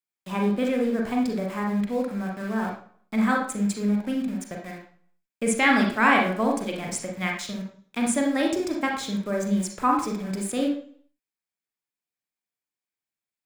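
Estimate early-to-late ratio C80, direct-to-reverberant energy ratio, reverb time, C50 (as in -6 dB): 8.5 dB, 0.0 dB, 0.50 s, 4.0 dB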